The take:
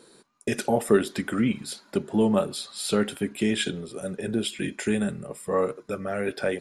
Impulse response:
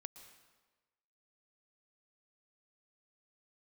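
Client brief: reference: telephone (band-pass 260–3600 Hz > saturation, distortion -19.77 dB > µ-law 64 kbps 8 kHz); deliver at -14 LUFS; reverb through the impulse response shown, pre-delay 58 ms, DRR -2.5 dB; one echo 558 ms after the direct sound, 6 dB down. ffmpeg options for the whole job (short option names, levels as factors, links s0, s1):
-filter_complex "[0:a]aecho=1:1:558:0.501,asplit=2[s0][s1];[1:a]atrim=start_sample=2205,adelay=58[s2];[s1][s2]afir=irnorm=-1:irlink=0,volume=2.51[s3];[s0][s3]amix=inputs=2:normalize=0,highpass=260,lowpass=3600,asoftclip=threshold=0.299,volume=3.35" -ar 8000 -c:a pcm_mulaw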